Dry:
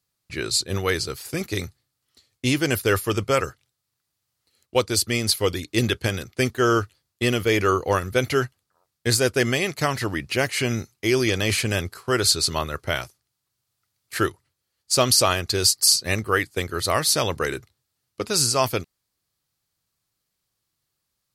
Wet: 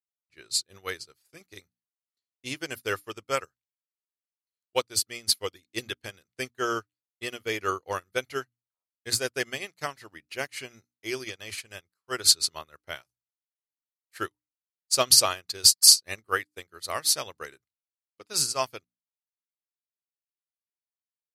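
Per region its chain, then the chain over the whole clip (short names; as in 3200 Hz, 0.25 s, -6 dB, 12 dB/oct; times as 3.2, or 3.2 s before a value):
11.24–12.11 bell 250 Hz -3 dB 1.5 oct + upward expander, over -39 dBFS
whole clip: low shelf 400 Hz -9.5 dB; notches 60/120/180/240/300 Hz; upward expander 2.5:1, over -39 dBFS; gain +4 dB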